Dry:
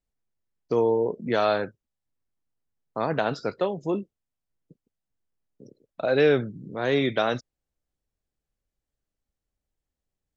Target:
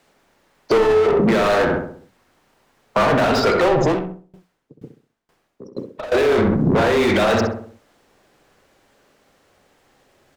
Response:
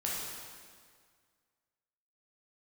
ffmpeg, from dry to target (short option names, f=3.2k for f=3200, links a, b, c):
-filter_complex "[0:a]afreqshift=-21,asplit=2[a][b];[b]highpass=f=720:p=1,volume=40dB,asoftclip=type=tanh:threshold=-9.5dB[c];[a][c]amix=inputs=2:normalize=0,lowpass=f=1.6k:p=1,volume=-6dB,bandreject=f=60:t=h:w=6,bandreject=f=120:t=h:w=6,bandreject=f=180:t=h:w=6,asplit=2[d][e];[e]adelay=65,lowpass=f=1.5k:p=1,volume=-3dB,asplit=2[f][g];[g]adelay=65,lowpass=f=1.5k:p=1,volume=0.49,asplit=2[h][i];[i]adelay=65,lowpass=f=1.5k:p=1,volume=0.49,asplit=2[j][k];[k]adelay=65,lowpass=f=1.5k:p=1,volume=0.49,asplit=2[l][m];[m]adelay=65,lowpass=f=1.5k:p=1,volume=0.49,asplit=2[n][o];[o]adelay=65,lowpass=f=1.5k:p=1,volume=0.49[p];[d][f][h][j][l][n][p]amix=inputs=7:normalize=0,alimiter=level_in=14dB:limit=-1dB:release=50:level=0:latency=1,asettb=1/sr,asplit=3[q][r][s];[q]atrim=end=3.864[t];[r]atrim=start=3.86:end=6.12,asetpts=PTS-STARTPTS,afade=t=in:d=0.004:c=qsin,afade=t=out:st=2.256:d=0.004:c=qsin,aeval=exprs='val(0)*pow(10,-25*if(lt(mod(2.1*n/s,1),2*abs(2.1)/1000),1-mod(2.1*n/s,1)/(2*abs(2.1)/1000),(mod(2.1*n/s,1)-2*abs(2.1)/1000)/(1-2*abs(2.1)/1000))/20)':c=same[u];[s]atrim=start=6.116[v];[t][u]acrossfade=d=0.004:c1=hsin:c2=qsin[w];[w][v]acrossfade=d=0.004:c1=qsin:c2=hsin,volume=-9dB"